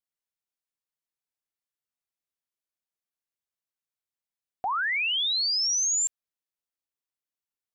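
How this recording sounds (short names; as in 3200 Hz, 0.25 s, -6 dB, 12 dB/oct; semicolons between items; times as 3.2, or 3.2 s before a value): noise floor -93 dBFS; spectral tilt +5.5 dB/oct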